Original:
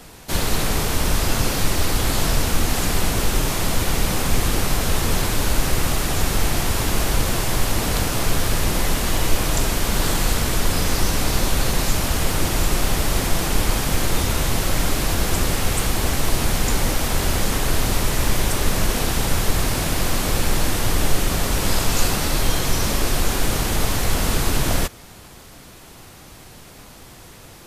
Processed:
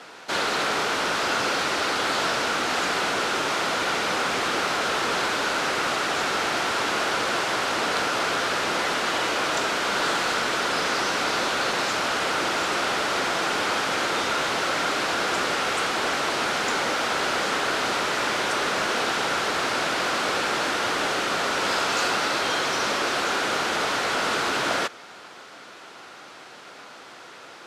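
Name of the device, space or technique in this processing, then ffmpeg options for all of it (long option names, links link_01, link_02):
intercom: -af "highpass=410,lowpass=4600,equalizer=frequency=1400:width_type=o:width=0.34:gain=7,asoftclip=type=tanh:threshold=-17dB,volume=2.5dB"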